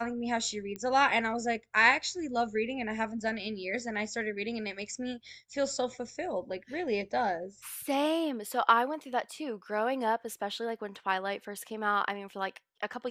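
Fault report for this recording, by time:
0:00.76: click −25 dBFS

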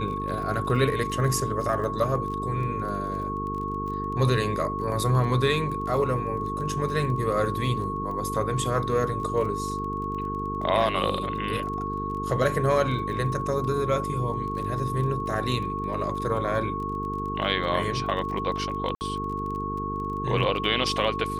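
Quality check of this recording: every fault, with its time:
mains buzz 50 Hz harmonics 9 −33 dBFS
surface crackle 21 per second −34 dBFS
whistle 1,100 Hz −30 dBFS
0:18.95–0:19.01: drop-out 59 ms

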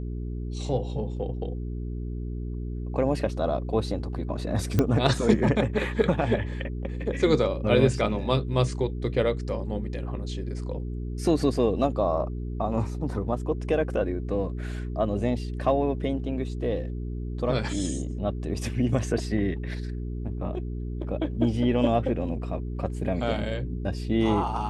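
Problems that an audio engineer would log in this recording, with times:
mains hum 60 Hz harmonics 7 −32 dBFS
0:04.79: click −10 dBFS

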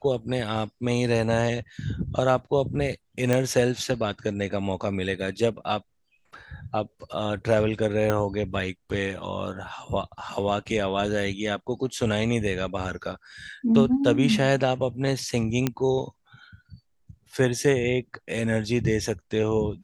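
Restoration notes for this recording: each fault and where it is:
0:03.33: click −10 dBFS
0:08.10: click −11 dBFS
0:15.67: click −9 dBFS

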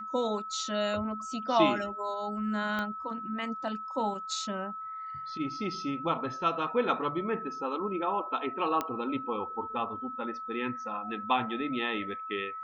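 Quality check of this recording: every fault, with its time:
whistle 1,300 Hz −37 dBFS
0:02.79: click −20 dBFS
0:08.81: click −16 dBFS

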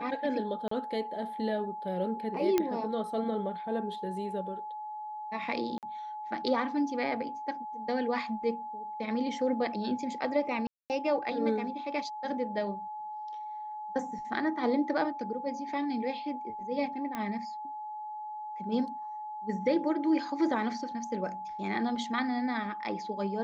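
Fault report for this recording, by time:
whistle 850 Hz −37 dBFS
0:00.68–0:00.71: drop-out 34 ms
0:02.58: click −13 dBFS
0:05.78–0:05.83: drop-out 48 ms
0:10.67–0:10.90: drop-out 228 ms
0:17.15: click −21 dBFS

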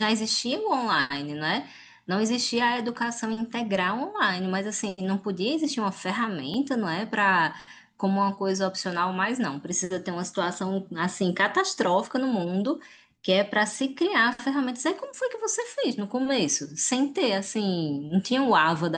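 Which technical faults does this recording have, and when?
0:06.54: drop-out 2.7 ms

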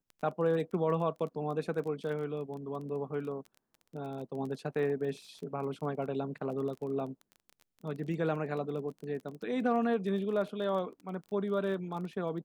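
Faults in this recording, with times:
surface crackle 22 per second −40 dBFS

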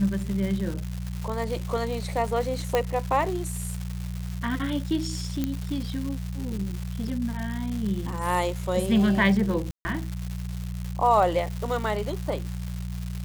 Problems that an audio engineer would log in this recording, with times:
surface crackle 350 per second −31 dBFS
mains hum 60 Hz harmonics 3 −32 dBFS
0:02.75: click −10 dBFS
0:05.44: click −13 dBFS
0:09.71–0:09.85: drop-out 140 ms

